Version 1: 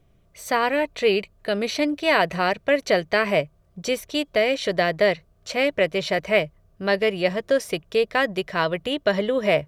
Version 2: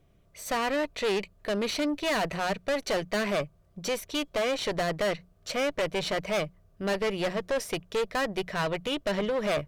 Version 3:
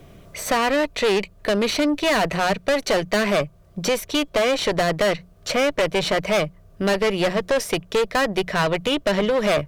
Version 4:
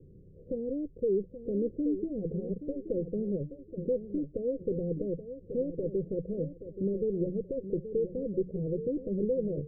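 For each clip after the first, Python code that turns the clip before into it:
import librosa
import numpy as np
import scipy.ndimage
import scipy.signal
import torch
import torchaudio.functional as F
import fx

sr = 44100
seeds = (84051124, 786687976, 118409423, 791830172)

y1 = fx.tube_stage(x, sr, drive_db=24.0, bias=0.5)
y1 = fx.hum_notches(y1, sr, base_hz=60, count=3)
y2 = fx.band_squash(y1, sr, depth_pct=40)
y2 = y2 * 10.0 ** (8.0 / 20.0)
y3 = scipy.signal.sosfilt(scipy.signal.cheby1(6, 3, 520.0, 'lowpass', fs=sr, output='sos'), y2)
y3 = fx.echo_feedback(y3, sr, ms=827, feedback_pct=29, wet_db=-11.0)
y3 = y3 * 10.0 ** (-6.0 / 20.0)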